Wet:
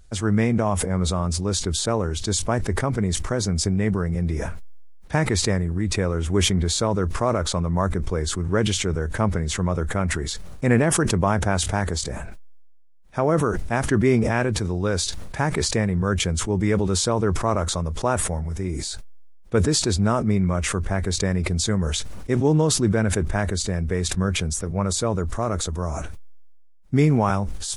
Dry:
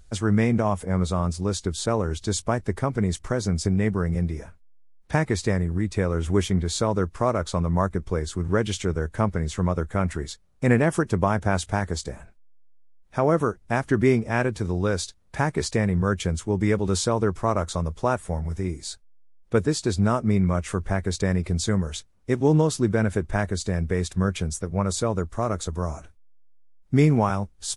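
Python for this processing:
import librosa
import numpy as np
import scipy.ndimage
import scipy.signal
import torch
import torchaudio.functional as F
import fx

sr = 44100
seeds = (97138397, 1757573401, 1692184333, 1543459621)

y = fx.sustainer(x, sr, db_per_s=26.0)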